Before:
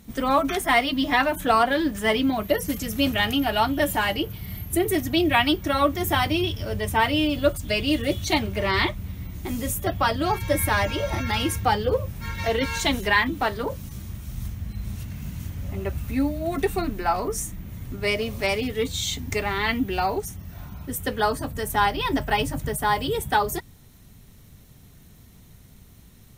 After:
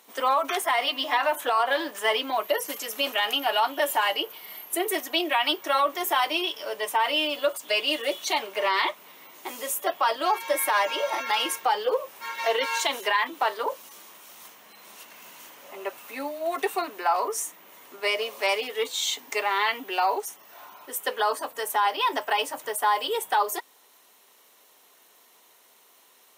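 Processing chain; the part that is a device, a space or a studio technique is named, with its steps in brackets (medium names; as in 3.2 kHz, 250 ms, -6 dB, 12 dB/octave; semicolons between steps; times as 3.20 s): laptop speaker (high-pass 430 Hz 24 dB/octave; peaking EQ 1 kHz +7 dB 0.54 oct; peaking EQ 2.9 kHz +4 dB 0.23 oct; peak limiter -14 dBFS, peak gain reduction 10 dB); 0.73–1.88 s: de-hum 146 Hz, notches 20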